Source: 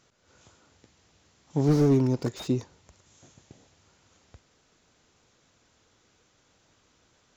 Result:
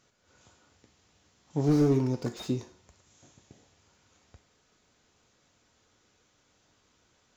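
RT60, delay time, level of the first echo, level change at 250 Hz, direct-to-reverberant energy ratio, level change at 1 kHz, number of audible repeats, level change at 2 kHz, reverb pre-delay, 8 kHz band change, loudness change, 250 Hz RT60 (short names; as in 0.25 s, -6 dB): 0.50 s, none, none, -2.5 dB, 6.5 dB, -2.5 dB, none, -2.0 dB, 4 ms, n/a, -2.5 dB, 0.50 s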